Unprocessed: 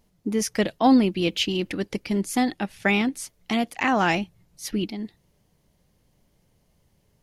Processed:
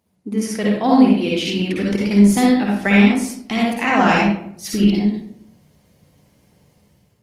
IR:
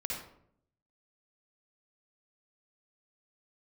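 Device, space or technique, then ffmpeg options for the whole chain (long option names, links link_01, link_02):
far-field microphone of a smart speaker: -filter_complex "[1:a]atrim=start_sample=2205[link_01];[0:a][link_01]afir=irnorm=-1:irlink=0,highpass=frequency=83:width=0.5412,highpass=frequency=83:width=1.3066,dynaudnorm=framelen=230:gausssize=5:maxgain=9dB" -ar 48000 -c:a libopus -b:a 32k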